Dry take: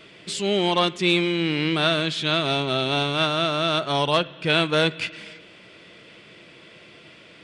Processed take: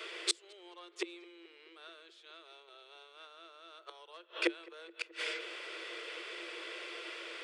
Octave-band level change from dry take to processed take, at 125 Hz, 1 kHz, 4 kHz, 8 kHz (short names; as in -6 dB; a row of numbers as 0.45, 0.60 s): under -40 dB, -24.5 dB, -18.0 dB, -6.5 dB